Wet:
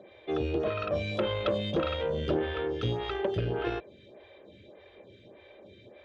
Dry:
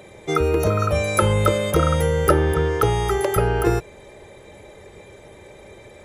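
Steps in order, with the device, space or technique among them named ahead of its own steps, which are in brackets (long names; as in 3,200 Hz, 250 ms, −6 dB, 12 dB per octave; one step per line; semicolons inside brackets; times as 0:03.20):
vibe pedal into a guitar amplifier (phaser with staggered stages 1.7 Hz; tube saturation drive 17 dB, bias 0.6; loudspeaker in its box 100–3,800 Hz, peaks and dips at 150 Hz −7 dB, 440 Hz −5 dB, 880 Hz −10 dB, 1,300 Hz −8 dB, 2,000 Hz −7 dB, 3,400 Hz +6 dB)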